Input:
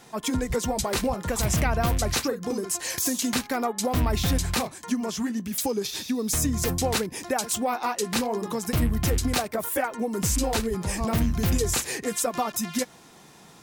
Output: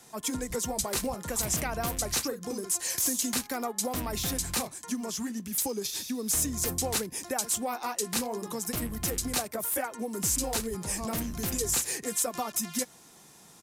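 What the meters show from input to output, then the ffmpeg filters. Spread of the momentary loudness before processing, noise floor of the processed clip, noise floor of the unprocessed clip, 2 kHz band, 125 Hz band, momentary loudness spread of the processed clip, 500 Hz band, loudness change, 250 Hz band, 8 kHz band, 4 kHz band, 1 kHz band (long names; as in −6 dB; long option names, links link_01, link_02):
5 LU, −54 dBFS, −51 dBFS, −6.5 dB, −11.5 dB, 6 LU, −6.5 dB, −3.5 dB, −7.0 dB, +0.5 dB, −3.5 dB, −6.5 dB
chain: -filter_complex "[0:a]acrossover=split=190|460|5900[link_01][link_02][link_03][link_04];[link_01]asoftclip=type=hard:threshold=-31dB[link_05];[link_02]acrusher=bits=6:mode=log:mix=0:aa=0.000001[link_06];[link_04]aeval=exprs='0.158*sin(PI/2*2*val(0)/0.158)':channel_layout=same[link_07];[link_05][link_06][link_03][link_07]amix=inputs=4:normalize=0,aresample=32000,aresample=44100,volume=-6.5dB"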